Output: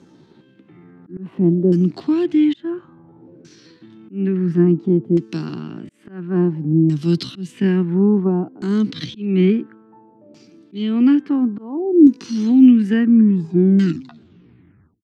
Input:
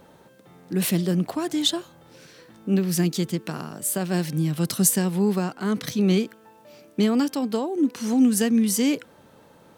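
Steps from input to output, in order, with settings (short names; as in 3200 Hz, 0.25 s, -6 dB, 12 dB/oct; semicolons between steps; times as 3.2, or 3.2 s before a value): tape stop at the end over 1.22 s; HPF 94 Hz 24 dB/oct; tempo 0.65×; dynamic EQ 2900 Hz, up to +5 dB, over -47 dBFS, Q 2.9; auto swell 0.314 s; LFO low-pass saw down 0.58 Hz 550–6700 Hz; resonant low shelf 430 Hz +7.5 dB, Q 3; gain -3 dB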